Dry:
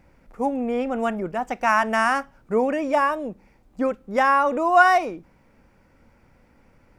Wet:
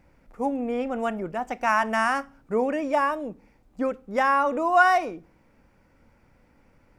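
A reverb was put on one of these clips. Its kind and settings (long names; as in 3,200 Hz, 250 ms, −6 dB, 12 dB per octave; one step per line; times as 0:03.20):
feedback delay network reverb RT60 0.45 s, low-frequency decay 1.45×, high-frequency decay 0.85×, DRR 19 dB
level −3 dB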